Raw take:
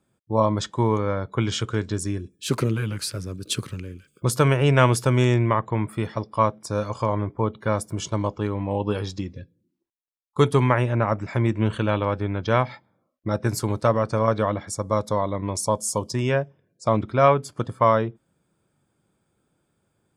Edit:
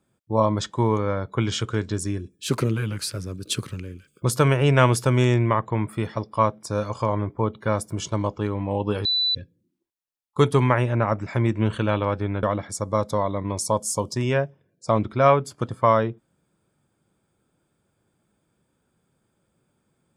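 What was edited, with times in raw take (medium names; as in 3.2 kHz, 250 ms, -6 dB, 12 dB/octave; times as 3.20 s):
9.05–9.35 s: bleep 3.98 kHz -19 dBFS
12.43–14.41 s: delete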